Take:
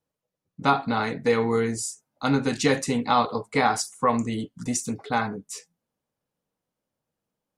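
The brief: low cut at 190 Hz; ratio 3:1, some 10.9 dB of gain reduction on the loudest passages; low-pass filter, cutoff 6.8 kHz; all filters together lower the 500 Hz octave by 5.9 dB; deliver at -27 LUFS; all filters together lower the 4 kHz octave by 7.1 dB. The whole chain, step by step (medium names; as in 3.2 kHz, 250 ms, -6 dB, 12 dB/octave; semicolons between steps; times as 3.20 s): high-pass 190 Hz; low-pass 6.8 kHz; peaking EQ 500 Hz -6.5 dB; peaking EQ 4 kHz -8 dB; compression 3:1, threshold -33 dBFS; trim +9.5 dB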